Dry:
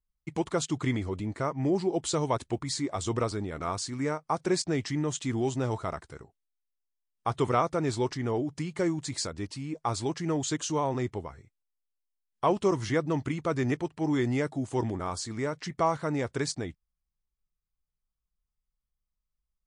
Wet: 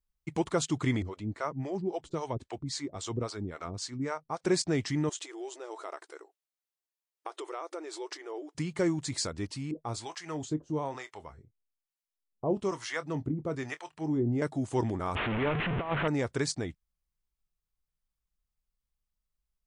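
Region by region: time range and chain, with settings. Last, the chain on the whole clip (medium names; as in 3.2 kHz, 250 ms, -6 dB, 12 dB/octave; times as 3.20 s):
1.02–4.44 s: low-pass 7.3 kHz + harmonic tremolo 3.7 Hz, depth 100%, crossover 460 Hz
5.09–8.55 s: compression 12:1, threshold -33 dBFS + brick-wall FIR high-pass 300 Hz
9.71–14.42 s: harmonic tremolo 1.1 Hz, depth 100%, crossover 640 Hz + doubling 26 ms -14 dB
15.15–16.08 s: one-bit delta coder 16 kbps, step -25.5 dBFS + compressor with a negative ratio -28 dBFS, ratio -0.5
whole clip: none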